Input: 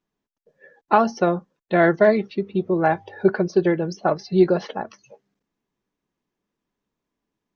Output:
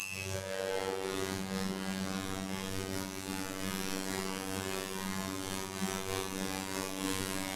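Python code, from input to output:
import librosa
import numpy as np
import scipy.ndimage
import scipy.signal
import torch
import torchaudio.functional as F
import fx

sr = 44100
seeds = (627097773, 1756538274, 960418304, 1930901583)

p1 = fx.delta_mod(x, sr, bps=64000, step_db=-24.5)
p2 = 10.0 ** (-20.0 / 20.0) * np.tanh(p1 / 10.0 ** (-20.0 / 20.0))
p3 = p1 + (p2 * 10.0 ** (-3.0 / 20.0))
p4 = fx.paulstretch(p3, sr, seeds[0], factor=7.8, window_s=0.05, from_s=5.05)
p5 = fx.robotise(p4, sr, hz=95.4)
p6 = fx.am_noise(p5, sr, seeds[1], hz=5.7, depth_pct=60)
y = p6 * 10.0 ** (-5.5 / 20.0)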